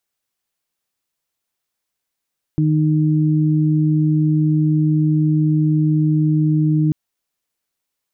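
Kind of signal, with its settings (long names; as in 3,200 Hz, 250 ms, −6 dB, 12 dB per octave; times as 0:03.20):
steady harmonic partials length 4.34 s, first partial 154 Hz, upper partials −4 dB, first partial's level −14 dB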